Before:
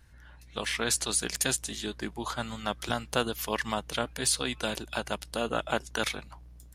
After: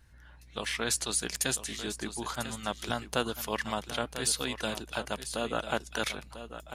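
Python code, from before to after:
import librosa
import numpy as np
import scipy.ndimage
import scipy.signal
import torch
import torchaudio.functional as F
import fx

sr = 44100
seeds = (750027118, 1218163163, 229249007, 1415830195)

y = x + 10.0 ** (-11.5 / 20.0) * np.pad(x, (int(995 * sr / 1000.0), 0))[:len(x)]
y = y * 10.0 ** (-2.0 / 20.0)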